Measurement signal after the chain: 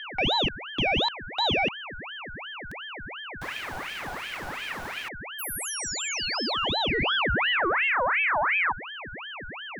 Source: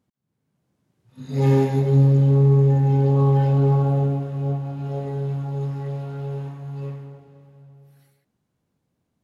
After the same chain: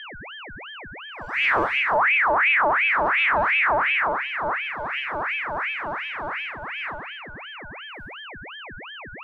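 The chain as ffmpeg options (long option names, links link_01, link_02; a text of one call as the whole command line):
ffmpeg -i in.wav -af "highshelf=frequency=3100:gain=-11,aeval=exprs='val(0)+0.02*sin(2*PI*720*n/s)':channel_layout=same,aeval=exprs='0.473*(cos(1*acos(clip(val(0)/0.473,-1,1)))-cos(1*PI/2))+0.00335*(cos(2*acos(clip(val(0)/0.473,-1,1)))-cos(2*PI/2))':channel_layout=same,asoftclip=type=tanh:threshold=-14dB,aeval=exprs='val(0)*sin(2*PI*1600*n/s+1600*0.55/2.8*sin(2*PI*2.8*n/s))':channel_layout=same,volume=1.5dB" out.wav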